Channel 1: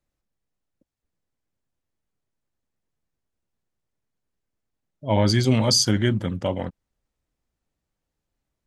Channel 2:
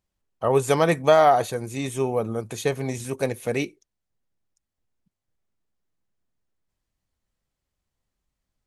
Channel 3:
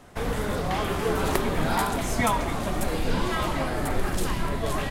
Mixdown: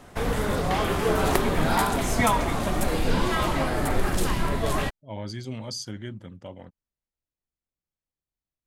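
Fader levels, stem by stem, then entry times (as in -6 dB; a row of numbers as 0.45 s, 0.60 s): -15.5 dB, -19.0 dB, +2.0 dB; 0.00 s, 0.00 s, 0.00 s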